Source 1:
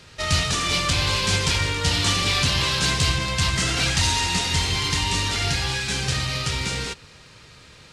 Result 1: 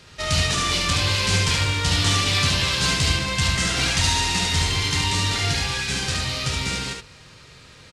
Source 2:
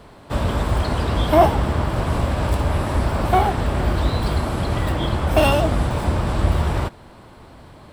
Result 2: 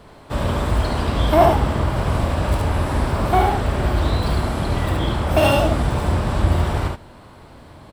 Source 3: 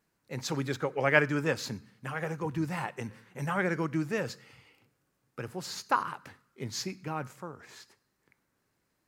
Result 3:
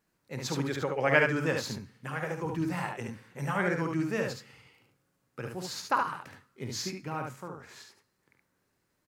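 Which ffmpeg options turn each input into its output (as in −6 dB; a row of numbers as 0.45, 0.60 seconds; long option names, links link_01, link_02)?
-af "aecho=1:1:50|72:0.316|0.631,volume=-1dB"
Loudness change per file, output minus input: +1.0, +0.5, +0.5 LU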